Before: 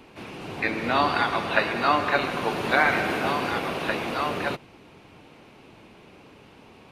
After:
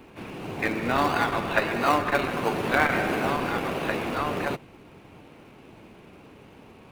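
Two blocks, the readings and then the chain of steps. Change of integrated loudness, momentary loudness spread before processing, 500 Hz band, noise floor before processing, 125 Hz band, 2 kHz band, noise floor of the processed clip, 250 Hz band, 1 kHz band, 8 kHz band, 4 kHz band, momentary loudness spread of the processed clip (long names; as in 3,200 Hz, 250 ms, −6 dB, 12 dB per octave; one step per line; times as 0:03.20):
−1.5 dB, 9 LU, 0.0 dB, −51 dBFS, +2.0 dB, −2.0 dB, −50 dBFS, +1.5 dB, −1.5 dB, +2.0 dB, −4.0 dB, 8 LU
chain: parametric band 5,000 Hz −6 dB 1.4 octaves
in parallel at −10 dB: sample-and-hold swept by an LFO 34×, swing 60% 1.5 Hz
on the sum: saturating transformer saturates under 900 Hz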